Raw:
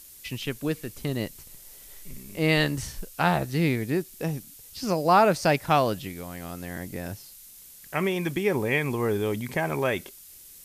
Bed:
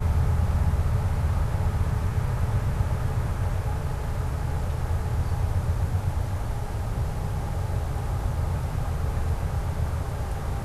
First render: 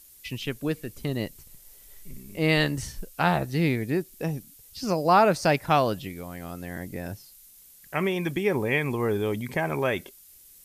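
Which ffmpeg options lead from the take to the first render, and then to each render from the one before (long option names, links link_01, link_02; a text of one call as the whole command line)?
ffmpeg -i in.wav -af "afftdn=noise_reduction=6:noise_floor=-48" out.wav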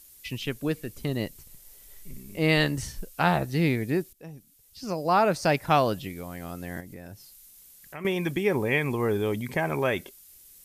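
ffmpeg -i in.wav -filter_complex "[0:a]asettb=1/sr,asplit=3[link_01][link_02][link_03];[link_01]atrim=end=6.804[link_04];[link_02]atrim=start=6.8:end=8.05,asetpts=PTS-STARTPTS,afade=type=in:duration=0.004:curve=qsin,afade=type=out:start_time=1.246:duration=0.004:curve=qsin,acompressor=threshold=-44dB:ratio=2:attack=3.2:release=140:knee=1:detection=peak[link_05];[link_03]atrim=start=8.046[link_06];[link_04][link_05]acrossfade=duration=0.004:curve1=hsin:curve2=qsin[link_07];[link_07][link_06]acrossfade=duration=0.004:curve1=qsin:curve2=hsin,asplit=2[link_08][link_09];[link_08]atrim=end=4.13,asetpts=PTS-STARTPTS,afade=type=out:start_time=4.126:duration=0.004:curve=hsin:silence=0.125893[link_10];[link_09]atrim=start=4.13,asetpts=PTS-STARTPTS,afade=type=in:duration=1.61:silence=0.125893[link_11];[link_10][link_11]concat=n=2:v=0:a=1" out.wav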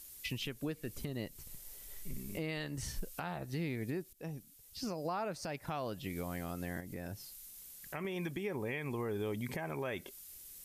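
ffmpeg -i in.wav -af "acompressor=threshold=-34dB:ratio=3,alimiter=level_in=4dB:limit=-24dB:level=0:latency=1:release=274,volume=-4dB" out.wav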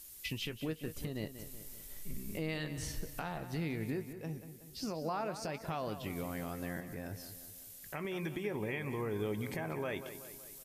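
ffmpeg -i in.wav -filter_complex "[0:a]asplit=2[link_01][link_02];[link_02]adelay=19,volume=-13.5dB[link_03];[link_01][link_03]amix=inputs=2:normalize=0,asplit=2[link_04][link_05];[link_05]adelay=187,lowpass=frequency=4800:poles=1,volume=-11dB,asplit=2[link_06][link_07];[link_07]adelay=187,lowpass=frequency=4800:poles=1,volume=0.53,asplit=2[link_08][link_09];[link_09]adelay=187,lowpass=frequency=4800:poles=1,volume=0.53,asplit=2[link_10][link_11];[link_11]adelay=187,lowpass=frequency=4800:poles=1,volume=0.53,asplit=2[link_12][link_13];[link_13]adelay=187,lowpass=frequency=4800:poles=1,volume=0.53,asplit=2[link_14][link_15];[link_15]adelay=187,lowpass=frequency=4800:poles=1,volume=0.53[link_16];[link_06][link_08][link_10][link_12][link_14][link_16]amix=inputs=6:normalize=0[link_17];[link_04][link_17]amix=inputs=2:normalize=0" out.wav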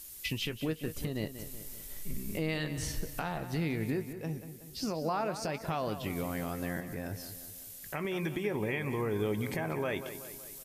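ffmpeg -i in.wav -af "volume=4.5dB" out.wav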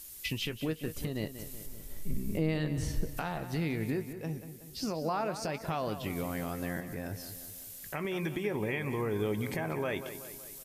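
ffmpeg -i in.wav -filter_complex "[0:a]asettb=1/sr,asplit=3[link_01][link_02][link_03];[link_01]atrim=end=1.664[link_04];[link_02]atrim=start=1.66:end=3.17,asetpts=PTS-STARTPTS,afade=type=in:duration=0.004:curve=qsin,afade=type=out:start_time=1.506:duration=0.004:curve=qsin,tiltshelf=frequency=770:gain=5[link_05];[link_03]atrim=start=3.166[link_06];[link_04][link_05]acrossfade=duration=0.004:curve1=hsin:curve2=qsin[link_07];[link_07][link_06]acrossfade=duration=0.004:curve1=qsin:curve2=hsin,asettb=1/sr,asplit=3[link_08][link_09][link_10];[link_08]atrim=end=7.274[link_11];[link_09]atrim=start=7.27:end=7.89,asetpts=PTS-STARTPTS,afade=type=in:duration=0.004:curve=qsin,afade=type=out:start_time=0.616:duration=0.004:curve=qsin,aeval=exprs='val(0)+0.5*0.00126*sgn(val(0))':channel_layout=same[link_12];[link_10]atrim=start=7.886[link_13];[link_11][link_12]acrossfade=duration=0.004:curve1=hsin:curve2=qsin[link_14];[link_14][link_13]acrossfade=duration=0.004:curve1=qsin:curve2=hsin" out.wav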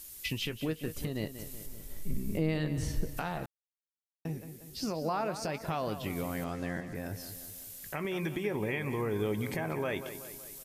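ffmpeg -i in.wav -filter_complex "[0:a]asettb=1/sr,asplit=3[link_01][link_02][link_03];[link_01]atrim=end=6.444[link_04];[link_02]atrim=start=6.44:end=6.95,asetpts=PTS-STARTPTS,afade=type=in:duration=0.004:curve=qsin,afade=type=out:start_time=0.506:duration=0.004:curve=qsin,lowpass=6600[link_05];[link_03]atrim=start=6.946[link_06];[link_04][link_05]acrossfade=duration=0.004:curve1=hsin:curve2=qsin[link_07];[link_07][link_06]acrossfade=duration=0.004:curve1=qsin:curve2=hsin,asplit=3[link_08][link_09][link_10];[link_08]atrim=end=3.46,asetpts=PTS-STARTPTS,afade=type=out:start_time=3.456:duration=0.004:curve=hsin[link_11];[link_09]atrim=start=3.46:end=4.25,asetpts=PTS-STARTPTS,volume=0[link_12];[link_10]atrim=start=4.25,asetpts=PTS-STARTPTS,afade=type=in:duration=0.004:curve=hsin[link_13];[link_11][link_12][link_13]concat=n=3:v=0:a=1" out.wav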